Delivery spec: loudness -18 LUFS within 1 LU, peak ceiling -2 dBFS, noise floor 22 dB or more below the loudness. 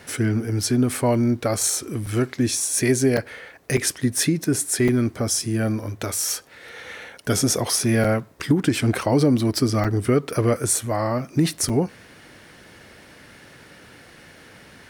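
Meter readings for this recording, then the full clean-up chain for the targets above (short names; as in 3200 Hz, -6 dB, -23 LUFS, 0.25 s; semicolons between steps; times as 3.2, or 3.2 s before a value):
dropouts 7; longest dropout 5.4 ms; loudness -22.0 LUFS; peak -7.5 dBFS; loudness target -18.0 LUFS
-> interpolate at 2.06/3.17/3.77/4.88/8.04/9.84/11.69, 5.4 ms; gain +4 dB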